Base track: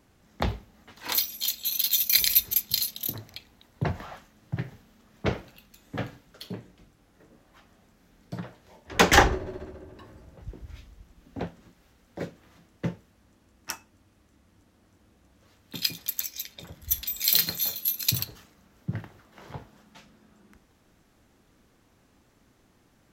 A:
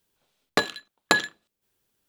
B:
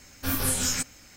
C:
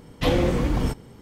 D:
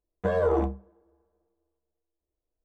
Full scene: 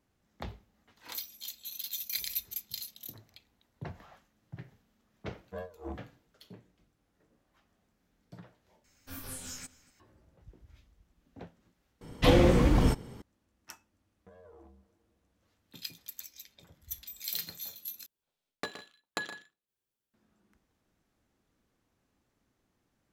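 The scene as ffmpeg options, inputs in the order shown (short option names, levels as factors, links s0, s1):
-filter_complex "[4:a]asplit=2[s0][s1];[0:a]volume=0.2[s2];[s0]aeval=exprs='val(0)*pow(10,-24*(0.5-0.5*cos(2*PI*3.2*n/s))/20)':c=same[s3];[2:a]asplit=2[s4][s5];[s5]adelay=239.1,volume=0.112,highshelf=f=4000:g=-5.38[s6];[s4][s6]amix=inputs=2:normalize=0[s7];[s1]acompressor=threshold=0.0112:ratio=6:attack=3.2:release=140:knee=1:detection=peak[s8];[1:a]aecho=1:1:119|155:0.266|0.158[s9];[s2]asplit=4[s10][s11][s12][s13];[s10]atrim=end=8.844[s14];[s7]atrim=end=1.16,asetpts=PTS-STARTPTS,volume=0.15[s15];[s11]atrim=start=9.996:end=12.014[s16];[3:a]atrim=end=1.21,asetpts=PTS-STARTPTS,volume=0.944[s17];[s12]atrim=start=13.216:end=18.064[s18];[s9]atrim=end=2.08,asetpts=PTS-STARTPTS,volume=0.168[s19];[s13]atrim=start=20.136[s20];[s3]atrim=end=2.64,asetpts=PTS-STARTPTS,volume=0.251,afade=t=in:d=0.004:c=hsin,afade=t=out:st=2.636:d=0.004:c=hsin,adelay=5280[s21];[s8]atrim=end=2.64,asetpts=PTS-STARTPTS,volume=0.188,afade=t=in:d=0.004:c=hsin,afade=t=out:st=2.636:d=0.004:c=hsin,adelay=14030[s22];[s14][s15]acrossfade=d=0.004:c1=hsin:c2=hsin[s23];[s23][s16]acrossfade=d=0.004:c1=hsin:c2=hsin[s24];[s24][s17]acrossfade=d=0.004:c1=hsin:c2=hsin[s25];[s25][s18]acrossfade=d=0.004:c1=hsin:c2=hsin[s26];[s26][s19]acrossfade=d=0.004:c1=hsin:c2=hsin[s27];[s27][s20]acrossfade=d=0.004:c1=hsin:c2=hsin[s28];[s28][s21][s22]amix=inputs=3:normalize=0"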